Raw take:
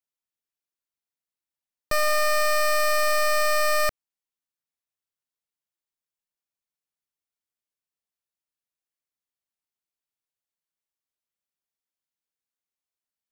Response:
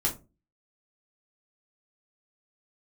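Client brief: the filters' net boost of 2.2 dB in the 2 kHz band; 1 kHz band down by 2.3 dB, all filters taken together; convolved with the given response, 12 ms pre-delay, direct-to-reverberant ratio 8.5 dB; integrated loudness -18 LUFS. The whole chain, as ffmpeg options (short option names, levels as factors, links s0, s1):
-filter_complex "[0:a]equalizer=f=1000:t=o:g=-4.5,equalizer=f=2000:t=o:g=3.5,asplit=2[s0][s1];[1:a]atrim=start_sample=2205,adelay=12[s2];[s1][s2]afir=irnorm=-1:irlink=0,volume=0.168[s3];[s0][s3]amix=inputs=2:normalize=0,volume=1.41"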